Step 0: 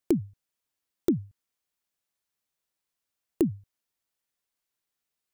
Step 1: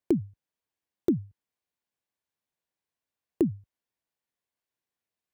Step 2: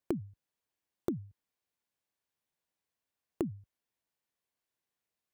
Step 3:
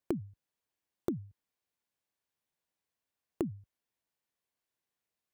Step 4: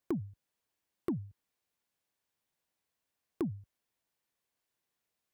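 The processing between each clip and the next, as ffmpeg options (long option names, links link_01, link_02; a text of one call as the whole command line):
ffmpeg -i in.wav -af "highpass=50,highshelf=frequency=3100:gain=-10,bandreject=frequency=1300:width=10" out.wav
ffmpeg -i in.wav -af "acompressor=threshold=-31dB:ratio=6" out.wav
ffmpeg -i in.wav -af anull out.wav
ffmpeg -i in.wav -af "asoftclip=type=tanh:threshold=-28dB,volume=3dB" out.wav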